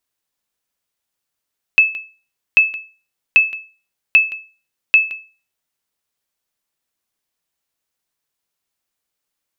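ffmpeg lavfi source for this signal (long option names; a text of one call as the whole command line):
ffmpeg -f lavfi -i "aevalsrc='0.75*(sin(2*PI*2610*mod(t,0.79))*exp(-6.91*mod(t,0.79)/0.35)+0.133*sin(2*PI*2610*max(mod(t,0.79)-0.17,0))*exp(-6.91*max(mod(t,0.79)-0.17,0)/0.35))':duration=3.95:sample_rate=44100" out.wav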